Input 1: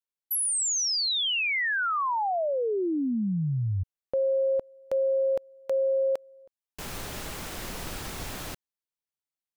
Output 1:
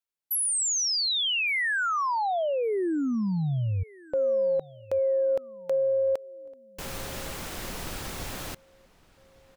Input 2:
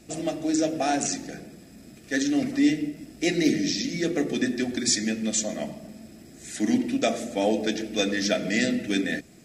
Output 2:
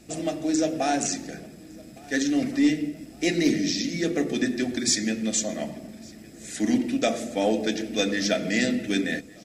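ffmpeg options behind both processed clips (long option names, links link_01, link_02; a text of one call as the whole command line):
ffmpeg -i in.wav -filter_complex "[0:a]asplit=2[link_01][link_02];[link_02]adelay=1160,lowpass=frequency=4700:poles=1,volume=-23.5dB,asplit=2[link_03][link_04];[link_04]adelay=1160,lowpass=frequency=4700:poles=1,volume=0.46,asplit=2[link_05][link_06];[link_06]adelay=1160,lowpass=frequency=4700:poles=1,volume=0.46[link_07];[link_01][link_03][link_05][link_07]amix=inputs=4:normalize=0,aeval=exprs='0.316*(cos(1*acos(clip(val(0)/0.316,-1,1)))-cos(1*PI/2))+0.00355*(cos(5*acos(clip(val(0)/0.316,-1,1)))-cos(5*PI/2))+0.00562*(cos(6*acos(clip(val(0)/0.316,-1,1)))-cos(6*PI/2))+0.00316*(cos(8*acos(clip(val(0)/0.316,-1,1)))-cos(8*PI/2))':channel_layout=same" out.wav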